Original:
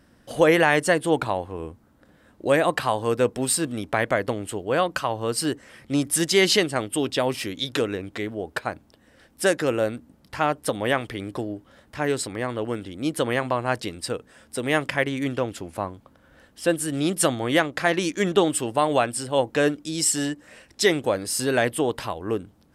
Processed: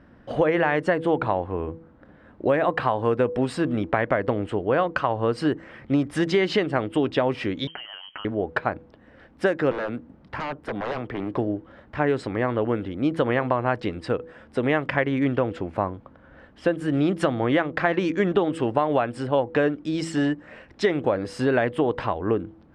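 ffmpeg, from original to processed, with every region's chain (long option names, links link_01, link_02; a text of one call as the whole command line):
ffmpeg -i in.wav -filter_complex "[0:a]asettb=1/sr,asplit=3[link_01][link_02][link_03];[link_01]atrim=end=7.674[link_04];[link_02]atrim=start=7.67:end=8.25,asetpts=PTS-STARTPTS,afade=type=in:duration=0.004:curve=qsin,afade=type=out:start_time=0.576:duration=0.004:curve=qsin,acompressor=threshold=-34dB:ratio=8:attack=3.2:release=140:knee=1:detection=peak,lowpass=frequency=2800:width_type=q:width=0.5098,lowpass=frequency=2800:width_type=q:width=0.6013,lowpass=frequency=2800:width_type=q:width=0.9,lowpass=frequency=2800:width_type=q:width=2.563,afreqshift=-3300[link_05];[link_03]atrim=start=8.246[link_06];[link_04][link_05]acrossfade=duration=0.004:curve1=hsin:curve2=qsin[link_07];[link_07][link_06]acrossfade=duration=0.004:curve1=qsin:curve2=hsin,asettb=1/sr,asplit=3[link_08][link_09][link_10];[link_08]atrim=end=9.714[link_11];[link_09]atrim=start=9.71:end=11.37,asetpts=PTS-STARTPTS,afade=type=in:duration=0.004:curve=qsin,afade=type=out:start_time=1.656:duration=0.004:curve=qsin,acrossover=split=150|1600[link_12][link_13][link_14];[link_12]acompressor=threshold=-47dB:ratio=4[link_15];[link_13]acompressor=threshold=-24dB:ratio=4[link_16];[link_14]acompressor=threshold=-40dB:ratio=4[link_17];[link_15][link_16][link_17]amix=inputs=3:normalize=0,aeval=exprs='0.0447*(abs(mod(val(0)/0.0447+3,4)-2)-1)':channel_layout=same[link_18];[link_10]atrim=start=11.366[link_19];[link_11][link_18]acrossfade=duration=0.004:curve1=hsin:curve2=qsin[link_20];[link_20][link_19]acrossfade=duration=0.004:curve1=qsin:curve2=hsin,lowpass=2000,bandreject=frequency=163.7:width_type=h:width=4,bandreject=frequency=327.4:width_type=h:width=4,bandreject=frequency=491.1:width_type=h:width=4,acompressor=threshold=-23dB:ratio=6,volume=5.5dB" out.wav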